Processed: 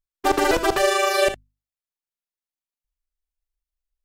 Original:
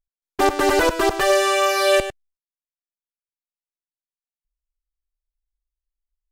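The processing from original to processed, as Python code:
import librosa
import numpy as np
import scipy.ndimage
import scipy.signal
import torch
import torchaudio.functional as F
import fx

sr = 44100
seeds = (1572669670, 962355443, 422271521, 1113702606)

y = fx.stretch_grains(x, sr, factor=0.64, grain_ms=77.0)
y = fx.hum_notches(y, sr, base_hz=50, count=5)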